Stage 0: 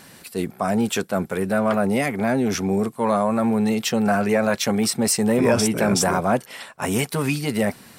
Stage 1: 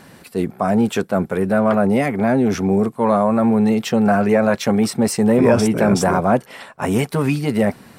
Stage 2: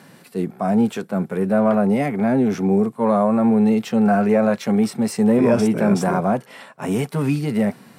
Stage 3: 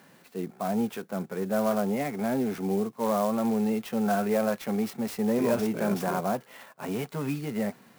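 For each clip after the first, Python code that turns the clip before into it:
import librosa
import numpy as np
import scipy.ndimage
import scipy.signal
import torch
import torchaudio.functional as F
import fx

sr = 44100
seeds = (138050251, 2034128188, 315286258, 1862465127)

y1 = fx.high_shelf(x, sr, hz=2300.0, db=-10.5)
y1 = y1 * librosa.db_to_amplitude(5.0)
y2 = scipy.signal.sosfilt(scipy.signal.butter(4, 120.0, 'highpass', fs=sr, output='sos'), y1)
y2 = fx.hpss(y2, sr, part='percussive', gain_db=-8)
y3 = fx.low_shelf(y2, sr, hz=240.0, db=-7.0)
y3 = fx.clock_jitter(y3, sr, seeds[0], jitter_ms=0.033)
y3 = y3 * librosa.db_to_amplitude(-7.0)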